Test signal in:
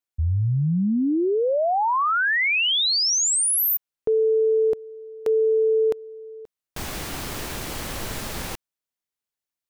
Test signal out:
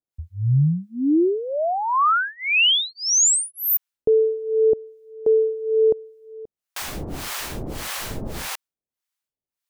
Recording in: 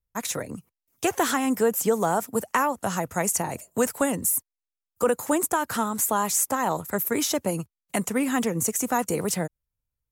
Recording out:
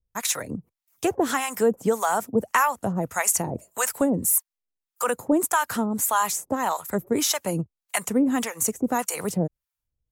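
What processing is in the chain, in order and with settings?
harmonic tremolo 1.7 Hz, depth 100%, crossover 700 Hz; gain +5.5 dB

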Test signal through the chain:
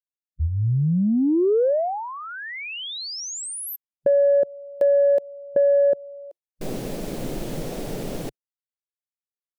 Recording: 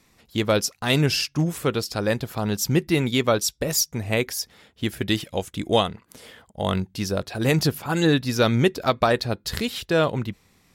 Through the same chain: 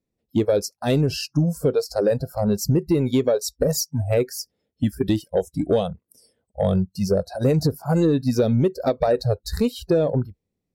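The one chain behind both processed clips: spectral noise reduction 28 dB; resonant low shelf 760 Hz +12 dB, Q 1.5; in parallel at -2 dB: limiter -5 dBFS; on the sum: compressor 10:1, threshold -6 dBFS; soft clip 0 dBFS; gain -8 dB

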